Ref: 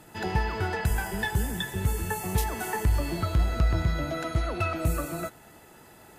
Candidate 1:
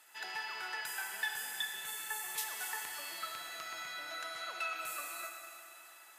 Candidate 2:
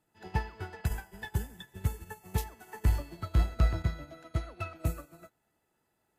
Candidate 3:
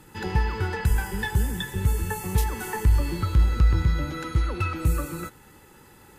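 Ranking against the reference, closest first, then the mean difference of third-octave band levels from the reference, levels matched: 3, 2, 1; 2.0 dB, 9.5 dB, 12.0 dB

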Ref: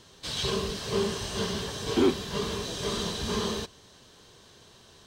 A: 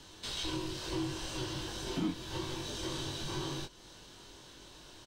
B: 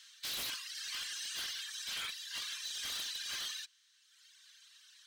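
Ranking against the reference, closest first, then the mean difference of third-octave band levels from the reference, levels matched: A, B; 5.0 dB, 14.0 dB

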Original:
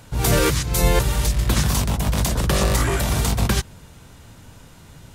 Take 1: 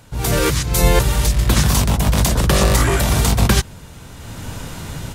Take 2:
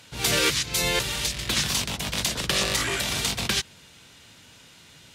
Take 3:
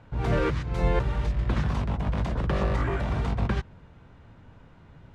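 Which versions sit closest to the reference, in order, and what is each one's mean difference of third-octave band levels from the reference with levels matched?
1, 2, 3; 3.0 dB, 4.5 dB, 7.5 dB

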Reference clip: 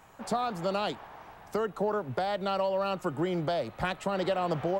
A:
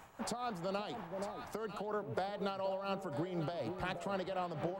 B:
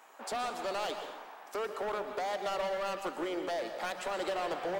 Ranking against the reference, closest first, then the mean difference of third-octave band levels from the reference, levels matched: A, B; 4.5 dB, 7.5 dB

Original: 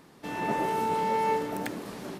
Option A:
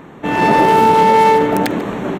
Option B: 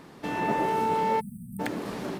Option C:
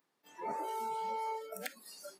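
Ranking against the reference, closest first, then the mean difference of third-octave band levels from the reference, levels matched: A, B, C; 3.0 dB, 5.5 dB, 10.5 dB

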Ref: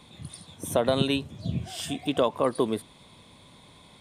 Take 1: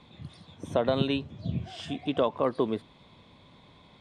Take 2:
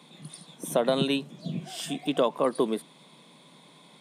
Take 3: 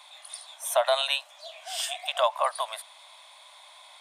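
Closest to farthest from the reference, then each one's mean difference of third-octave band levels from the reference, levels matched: 2, 1, 3; 1.5 dB, 3.0 dB, 13.5 dB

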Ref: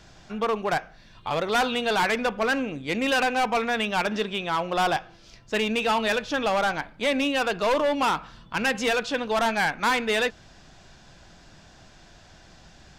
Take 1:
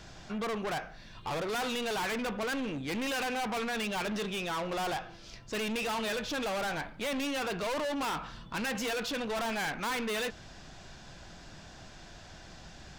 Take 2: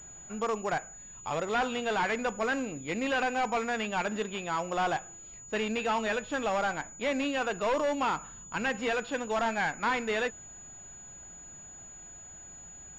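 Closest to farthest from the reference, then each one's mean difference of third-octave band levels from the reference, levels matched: 2, 1; 3.5 dB, 6.5 dB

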